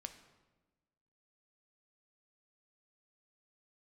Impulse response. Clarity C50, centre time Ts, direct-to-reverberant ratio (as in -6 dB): 10.5 dB, 13 ms, 7.5 dB